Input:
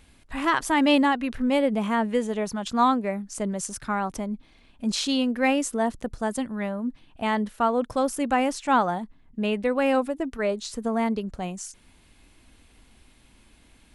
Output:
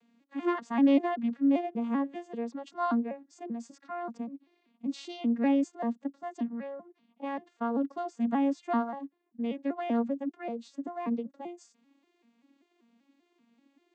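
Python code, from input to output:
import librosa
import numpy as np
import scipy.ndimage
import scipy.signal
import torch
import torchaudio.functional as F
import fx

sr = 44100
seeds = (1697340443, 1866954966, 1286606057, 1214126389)

y = fx.vocoder_arp(x, sr, chord='minor triad', root=58, every_ms=194)
y = y * librosa.db_to_amplitude(-5.0)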